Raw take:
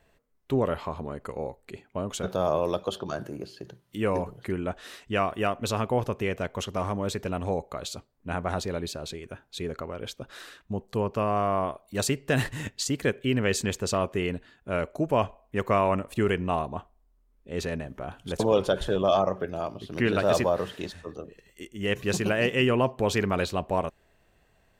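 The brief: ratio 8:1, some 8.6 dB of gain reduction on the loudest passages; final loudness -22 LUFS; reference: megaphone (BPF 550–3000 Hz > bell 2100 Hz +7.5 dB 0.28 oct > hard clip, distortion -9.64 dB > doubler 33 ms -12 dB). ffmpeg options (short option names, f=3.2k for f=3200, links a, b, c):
-filter_complex "[0:a]acompressor=threshold=-27dB:ratio=8,highpass=550,lowpass=3k,equalizer=f=2.1k:t=o:w=0.28:g=7.5,asoftclip=type=hard:threshold=-31.5dB,asplit=2[a][b];[b]adelay=33,volume=-12dB[c];[a][c]amix=inputs=2:normalize=0,volume=17.5dB"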